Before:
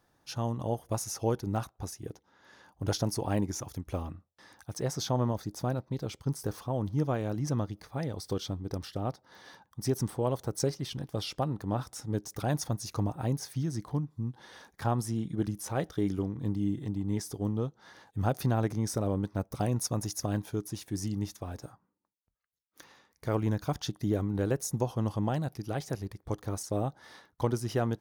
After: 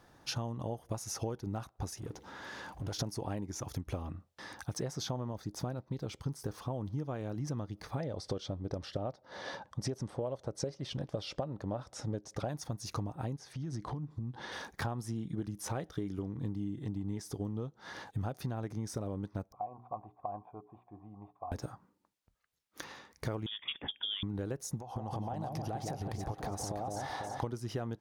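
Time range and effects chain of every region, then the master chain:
1.97–2.99 s: compression 2:1, threshold -60 dBFS + power-law waveshaper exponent 0.7
8.00–12.49 s: low-pass 7.3 kHz + peaking EQ 580 Hz +10 dB 0.46 oct
13.36–14.52 s: distance through air 53 m + compression 10:1, threshold -42 dBFS
19.52–21.52 s: cascade formant filter a + hum notches 60/120/180/240/300/360/420 Hz
23.46–24.23 s: frequency inversion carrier 3.5 kHz + high-pass 220 Hz 6 dB/octave + distance through air 380 m
24.79–27.43 s: peaking EQ 770 Hz +14 dB 0.56 oct + compression 16:1, threshold -38 dBFS + echo whose repeats swap between lows and highs 165 ms, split 950 Hz, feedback 62%, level -2.5 dB
whole clip: treble shelf 9.2 kHz -8.5 dB; compression 10:1, threshold -43 dBFS; trim +9 dB

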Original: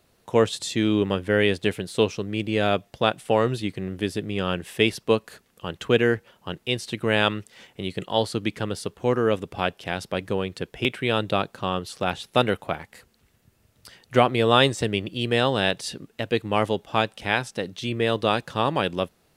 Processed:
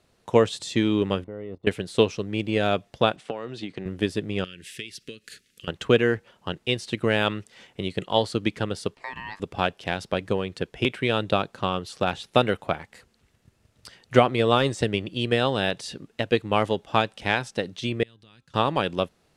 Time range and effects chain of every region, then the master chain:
1.24–1.67 s: companding laws mixed up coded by A + Savitzky-Golay filter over 65 samples + level held to a coarse grid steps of 17 dB
3.16–3.86 s: compression 10:1, threshold -26 dBFS + band-pass 170–6100 Hz
4.44–5.68 s: tilt shelf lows -5.5 dB, about 670 Hz + compression 4:1, threshold -34 dBFS + Butterworth band-stop 860 Hz, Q 0.56
8.95–9.40 s: frequency weighting A + compression 3:1, threshold -30 dBFS + ring modulator 1.4 kHz
18.03–18.54 s: amplifier tone stack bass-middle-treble 6-0-2 + compression, threshold -48 dBFS + de-hum 265.6 Hz, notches 6
whole clip: de-esser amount 60%; low-pass 9.2 kHz 12 dB/octave; transient shaper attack +5 dB, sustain +1 dB; trim -2 dB

